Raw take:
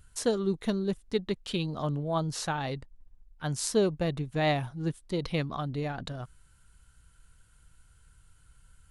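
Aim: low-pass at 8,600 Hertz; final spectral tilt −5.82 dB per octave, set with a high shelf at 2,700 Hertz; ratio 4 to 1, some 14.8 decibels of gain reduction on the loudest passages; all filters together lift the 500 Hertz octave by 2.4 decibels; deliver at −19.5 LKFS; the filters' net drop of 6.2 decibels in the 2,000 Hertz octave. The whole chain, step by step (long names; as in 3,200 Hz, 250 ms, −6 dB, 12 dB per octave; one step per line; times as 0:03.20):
low-pass filter 8,600 Hz
parametric band 500 Hz +3.5 dB
parametric band 2,000 Hz −6 dB
high-shelf EQ 2,700 Hz −5 dB
downward compressor 4 to 1, threshold −37 dBFS
level +21 dB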